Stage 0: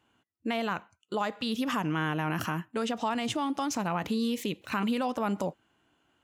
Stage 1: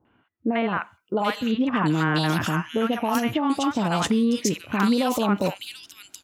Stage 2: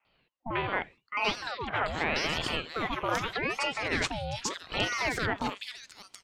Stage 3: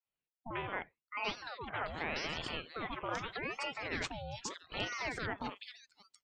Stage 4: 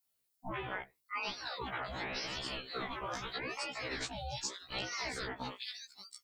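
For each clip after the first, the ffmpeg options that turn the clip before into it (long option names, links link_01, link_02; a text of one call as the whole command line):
ffmpeg -i in.wav -filter_complex "[0:a]acrossover=split=850|2700[link_01][link_02][link_03];[link_02]adelay=50[link_04];[link_03]adelay=740[link_05];[link_01][link_04][link_05]amix=inputs=3:normalize=0,volume=8.5dB" out.wav
ffmpeg -i in.wav -filter_complex "[0:a]acrossover=split=500 7300:gain=0.178 1 0.126[link_01][link_02][link_03];[link_01][link_02][link_03]amix=inputs=3:normalize=0,aeval=exprs='val(0)*sin(2*PI*1000*n/s+1000*0.7/0.82*sin(2*PI*0.82*n/s))':channel_layout=same" out.wav
ffmpeg -i in.wav -af "afftdn=noise_reduction=19:noise_floor=-46,volume=-8.5dB" out.wav
ffmpeg -i in.wav -af "aexciter=amount=2.1:drive=6.9:freq=3800,acompressor=threshold=-40dB:ratio=6,afftfilt=real='re*1.73*eq(mod(b,3),0)':imag='im*1.73*eq(mod(b,3),0)':win_size=2048:overlap=0.75,volume=7dB" out.wav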